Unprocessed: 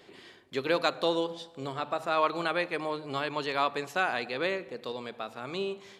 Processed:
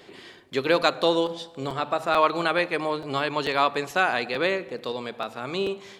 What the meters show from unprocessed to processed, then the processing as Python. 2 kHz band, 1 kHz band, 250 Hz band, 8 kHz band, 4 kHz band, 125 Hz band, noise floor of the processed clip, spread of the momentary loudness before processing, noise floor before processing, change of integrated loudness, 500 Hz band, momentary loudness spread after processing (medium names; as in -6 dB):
+6.0 dB, +6.0 dB, +6.0 dB, +6.0 dB, +6.0 dB, +6.0 dB, -49 dBFS, 11 LU, -55 dBFS, +6.0 dB, +6.0 dB, 11 LU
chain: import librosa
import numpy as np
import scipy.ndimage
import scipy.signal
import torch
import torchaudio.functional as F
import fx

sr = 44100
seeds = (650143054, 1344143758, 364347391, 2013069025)

y = fx.buffer_crackle(x, sr, first_s=0.38, period_s=0.44, block=256, kind='repeat')
y = F.gain(torch.from_numpy(y), 6.0).numpy()